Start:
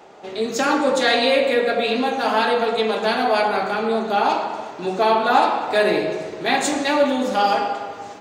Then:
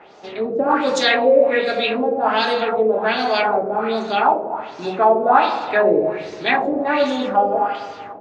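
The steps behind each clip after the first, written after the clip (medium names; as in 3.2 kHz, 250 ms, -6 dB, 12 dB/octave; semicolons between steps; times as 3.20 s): LFO low-pass sine 1.3 Hz 490–6000 Hz; trim -1 dB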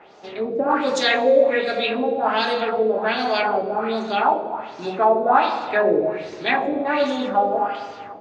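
Schroeder reverb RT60 1.4 s, combs from 28 ms, DRR 18 dB; trim -2.5 dB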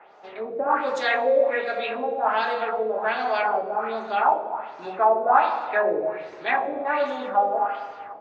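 three-band isolator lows -13 dB, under 540 Hz, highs -14 dB, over 2.2 kHz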